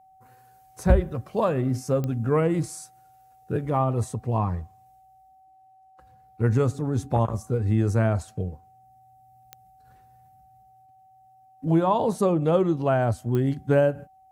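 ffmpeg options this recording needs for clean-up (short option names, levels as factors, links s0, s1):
-af "adeclick=t=4,bandreject=f=760:w=30"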